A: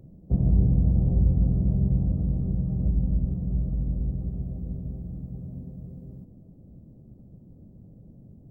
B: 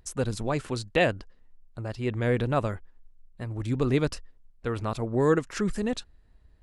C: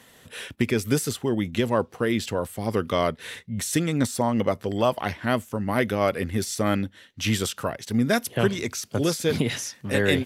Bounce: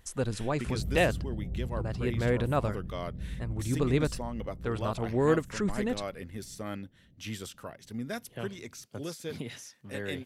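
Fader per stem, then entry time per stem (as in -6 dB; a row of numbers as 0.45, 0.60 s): -14.5, -2.5, -14.5 dB; 0.35, 0.00, 0.00 s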